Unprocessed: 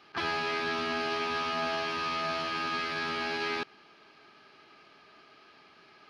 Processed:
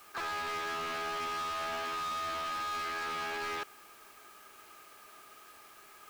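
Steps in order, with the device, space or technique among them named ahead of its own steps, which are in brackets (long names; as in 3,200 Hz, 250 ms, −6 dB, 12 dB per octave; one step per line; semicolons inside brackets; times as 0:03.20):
drive-through speaker (band-pass filter 380–3,000 Hz; parametric band 1,200 Hz +4.5 dB 0.29 octaves; hard clipping −34.5 dBFS, distortion −8 dB; white noise bed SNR 21 dB)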